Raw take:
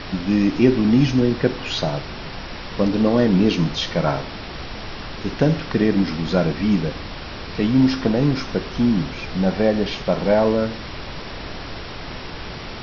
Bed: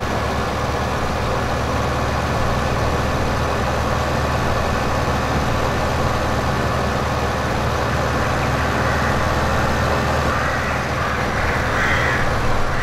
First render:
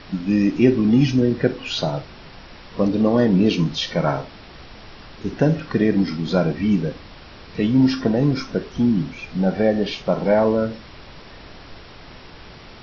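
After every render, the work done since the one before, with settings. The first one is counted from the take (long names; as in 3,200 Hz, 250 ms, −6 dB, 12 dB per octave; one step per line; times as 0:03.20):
noise reduction from a noise print 9 dB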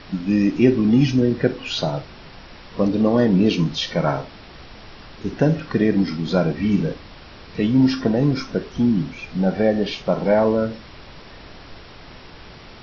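0:06.53–0:06.94: flutter between parallel walls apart 8.4 metres, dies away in 0.38 s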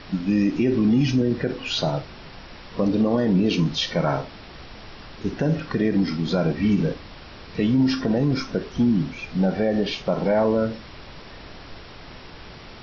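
brickwall limiter −12 dBFS, peak gain reduction 9 dB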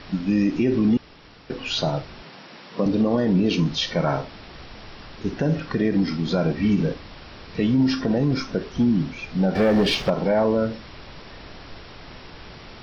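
0:00.97–0:01.50: fill with room tone
0:02.23–0:02.86: high-pass filter 150 Hz 24 dB per octave
0:09.55–0:10.10: leveller curve on the samples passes 2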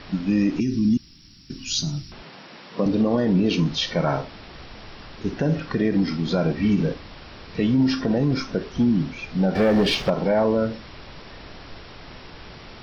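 0:00.60–0:02.12: drawn EQ curve 230 Hz 0 dB, 340 Hz −6 dB, 490 Hz −28 dB, 3,600 Hz −3 dB, 6,100 Hz +12 dB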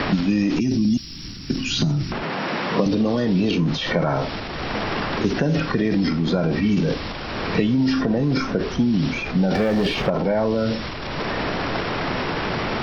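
transient designer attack 0 dB, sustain +8 dB
multiband upward and downward compressor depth 100%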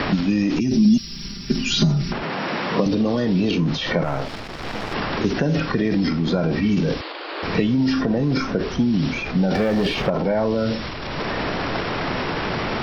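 0:00.72–0:02.13: comb filter 5 ms, depth 88%
0:04.03–0:04.94: gain on one half-wave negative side −12 dB
0:07.01–0:07.43: Chebyshev band-pass filter 310–4,700 Hz, order 5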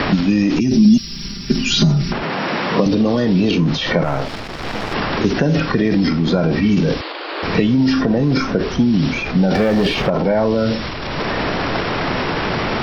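level +4.5 dB
brickwall limiter −3 dBFS, peak gain reduction 1.5 dB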